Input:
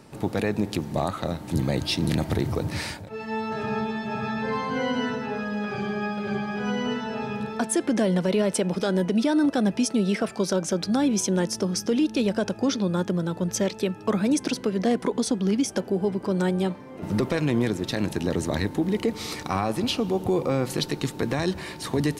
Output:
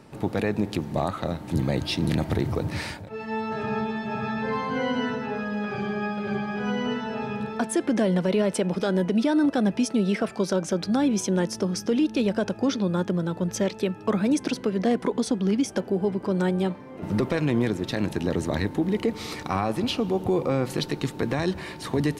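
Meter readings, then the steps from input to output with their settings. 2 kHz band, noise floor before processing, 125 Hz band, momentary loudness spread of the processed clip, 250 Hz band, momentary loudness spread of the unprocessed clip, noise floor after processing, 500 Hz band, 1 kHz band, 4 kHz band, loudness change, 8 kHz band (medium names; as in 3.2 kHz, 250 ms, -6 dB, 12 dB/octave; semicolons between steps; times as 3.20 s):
-0.5 dB, -40 dBFS, 0.0 dB, 6 LU, 0.0 dB, 6 LU, -41 dBFS, 0.0 dB, 0.0 dB, -2.5 dB, 0.0 dB, -4.5 dB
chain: tone controls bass 0 dB, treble -5 dB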